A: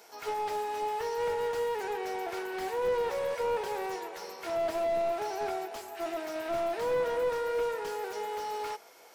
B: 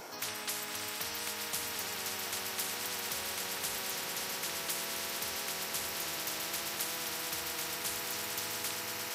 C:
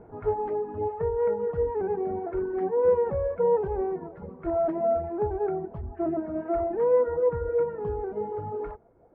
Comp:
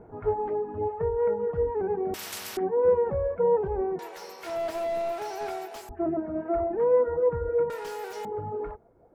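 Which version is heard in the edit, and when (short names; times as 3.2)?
C
2.14–2.57 from B
3.99–5.89 from A
7.7–8.25 from A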